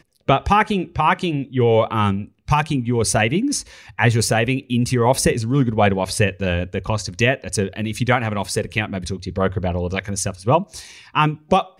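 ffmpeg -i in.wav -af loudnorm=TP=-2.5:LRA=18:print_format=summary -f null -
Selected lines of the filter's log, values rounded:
Input Integrated:    -20.2 LUFS
Input True Peak:      -3.3 dBTP
Input LRA:             3.3 LU
Input Threshold:     -30.4 LUFS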